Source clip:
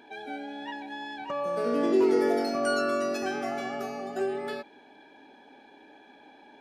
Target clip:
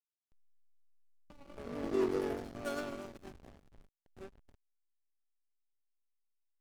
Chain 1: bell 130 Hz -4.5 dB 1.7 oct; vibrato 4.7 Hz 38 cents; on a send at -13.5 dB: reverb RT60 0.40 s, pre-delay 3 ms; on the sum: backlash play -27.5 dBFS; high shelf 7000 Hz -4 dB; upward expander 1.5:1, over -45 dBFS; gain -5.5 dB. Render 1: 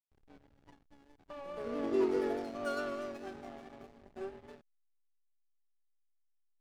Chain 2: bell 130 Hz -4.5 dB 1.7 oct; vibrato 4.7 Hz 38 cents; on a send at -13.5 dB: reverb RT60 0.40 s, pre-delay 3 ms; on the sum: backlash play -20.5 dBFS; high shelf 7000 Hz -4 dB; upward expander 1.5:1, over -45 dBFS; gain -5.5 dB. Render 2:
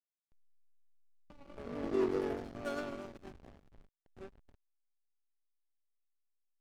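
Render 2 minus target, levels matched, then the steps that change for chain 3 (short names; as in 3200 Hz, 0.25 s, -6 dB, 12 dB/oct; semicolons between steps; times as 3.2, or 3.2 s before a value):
8000 Hz band -5.0 dB
change: high shelf 7000 Hz +6 dB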